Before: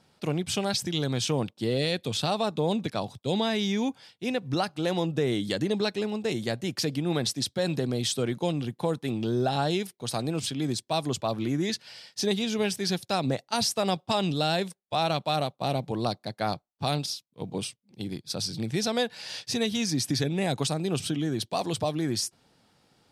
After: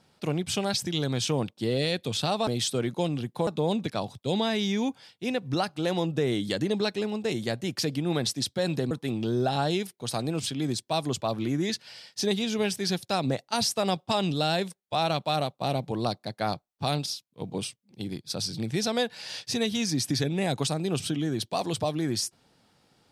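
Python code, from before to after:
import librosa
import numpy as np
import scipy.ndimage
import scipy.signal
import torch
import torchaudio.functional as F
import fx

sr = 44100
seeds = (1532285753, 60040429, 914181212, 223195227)

y = fx.edit(x, sr, fx.move(start_s=7.91, length_s=1.0, to_s=2.47), tone=tone)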